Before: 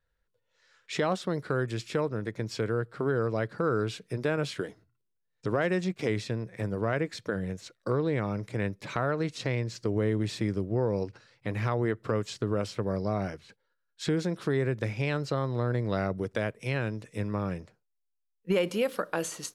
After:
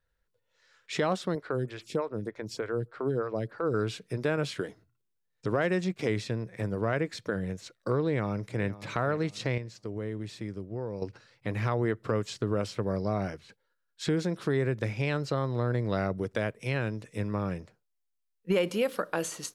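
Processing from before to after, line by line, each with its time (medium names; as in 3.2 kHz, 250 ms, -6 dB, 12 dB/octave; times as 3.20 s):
1.35–3.74 s: lamp-driven phase shifter 3.3 Hz
8.07–8.66 s: echo throw 510 ms, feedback 40%, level -16.5 dB
9.58–11.02 s: gain -8 dB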